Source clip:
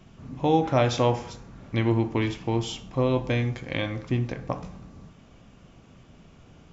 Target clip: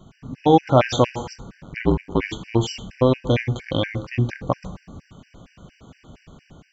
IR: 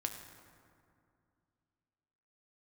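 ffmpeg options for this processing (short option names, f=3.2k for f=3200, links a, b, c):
-filter_complex "[0:a]asettb=1/sr,asplit=3[a][b][c];[a]atrim=end=1.624[d];[b]atrim=start=1.62:end=2.29,asetpts=PTS-STARTPTS,afade=t=in:d=0.004:c=qsin,afade=t=out:st=0.666:d=0.004:c=qsin,aeval=exprs='val(0)*sin(2*PI*48*n/s)':c=same[e];[c]atrim=start=2.286[f];[d][e]acrossfade=d=0.004:c1=hsin:c2=qsin[g];[g][f]acrossfade=d=0.004:c1=qsin:c2=hsin,dynaudnorm=f=100:g=7:m=3.5dB,afftfilt=real='re*gt(sin(2*PI*4.3*pts/sr)*(1-2*mod(floor(b*sr/1024/1500),2)),0)':imag='im*gt(sin(2*PI*4.3*pts/sr)*(1-2*mod(floor(b*sr/1024/1500),2)),0)':win_size=1024:overlap=0.75,volume=4.5dB"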